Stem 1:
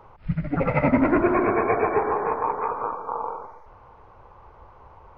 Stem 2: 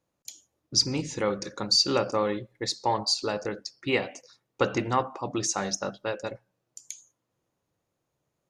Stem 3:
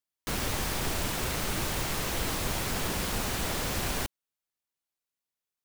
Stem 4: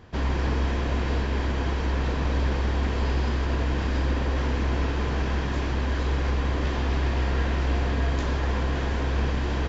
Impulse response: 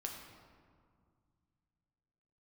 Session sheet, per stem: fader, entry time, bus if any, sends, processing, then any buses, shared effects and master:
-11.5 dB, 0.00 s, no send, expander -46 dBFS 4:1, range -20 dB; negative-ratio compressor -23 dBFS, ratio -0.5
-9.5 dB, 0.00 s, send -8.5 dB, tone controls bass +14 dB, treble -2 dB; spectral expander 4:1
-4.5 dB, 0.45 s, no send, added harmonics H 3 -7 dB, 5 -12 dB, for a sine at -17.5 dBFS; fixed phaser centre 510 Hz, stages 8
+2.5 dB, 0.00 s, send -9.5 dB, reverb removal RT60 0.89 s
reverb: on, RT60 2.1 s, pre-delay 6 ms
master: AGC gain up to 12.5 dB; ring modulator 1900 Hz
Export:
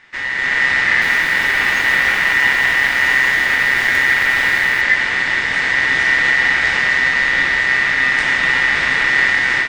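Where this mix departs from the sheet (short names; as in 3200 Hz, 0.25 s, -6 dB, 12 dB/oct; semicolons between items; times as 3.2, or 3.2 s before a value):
stem 3: entry 0.45 s -> 0.75 s; stem 4: missing reverb removal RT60 0.89 s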